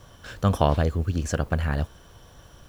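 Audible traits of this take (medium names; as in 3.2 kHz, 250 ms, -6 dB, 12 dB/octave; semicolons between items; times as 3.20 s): noise floor -51 dBFS; spectral tilt -6.5 dB/octave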